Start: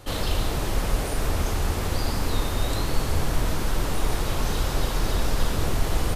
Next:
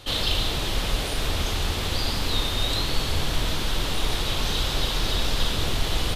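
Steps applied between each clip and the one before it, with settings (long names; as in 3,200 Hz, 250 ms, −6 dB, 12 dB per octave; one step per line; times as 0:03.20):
parametric band 3,500 Hz +13 dB 1.1 octaves
level −2 dB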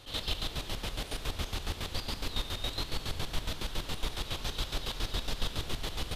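square-wave tremolo 7.2 Hz, depth 65%, duty 40%
level −7.5 dB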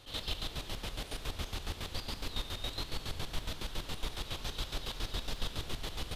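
surface crackle 12 per second −44 dBFS
level −3.5 dB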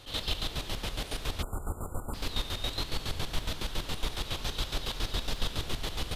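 time-frequency box erased 0:01.42–0:02.14, 1,500–7,000 Hz
level +5 dB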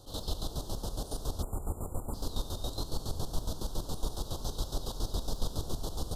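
Butterworth band-reject 2,200 Hz, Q 0.56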